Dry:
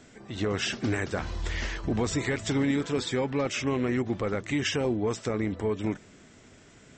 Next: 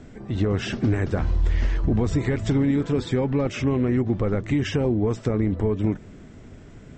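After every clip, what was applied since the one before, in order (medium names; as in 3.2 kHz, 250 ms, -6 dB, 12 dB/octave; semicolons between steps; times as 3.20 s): tilt EQ -3 dB/octave; compression 2:1, threshold -24 dBFS, peak gain reduction 5 dB; trim +3.5 dB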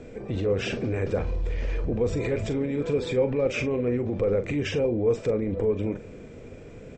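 peak limiter -21 dBFS, peak gain reduction 10 dB; doubling 41 ms -10 dB; small resonant body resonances 490/2400 Hz, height 15 dB, ringing for 30 ms; trim -2 dB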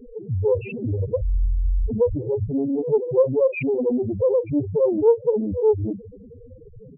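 bit crusher 9-bit; loudest bins only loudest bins 2; loudspeaker Doppler distortion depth 0.32 ms; trim +8.5 dB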